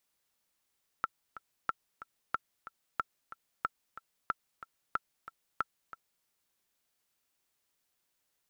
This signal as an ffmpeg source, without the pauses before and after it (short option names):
-f lavfi -i "aevalsrc='pow(10,(-16.5-15*gte(mod(t,2*60/184),60/184))/20)*sin(2*PI*1340*mod(t,60/184))*exp(-6.91*mod(t,60/184)/0.03)':d=5.21:s=44100"